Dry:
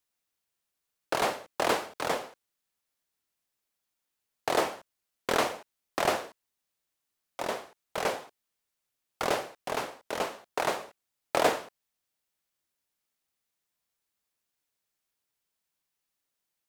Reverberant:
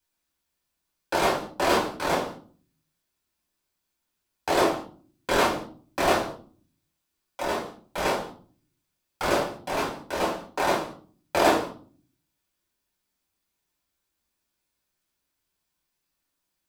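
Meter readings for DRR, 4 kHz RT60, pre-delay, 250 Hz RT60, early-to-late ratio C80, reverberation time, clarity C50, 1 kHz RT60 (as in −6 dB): −4.5 dB, 0.30 s, 5 ms, 0.70 s, 13.5 dB, 0.45 s, 8.5 dB, 0.40 s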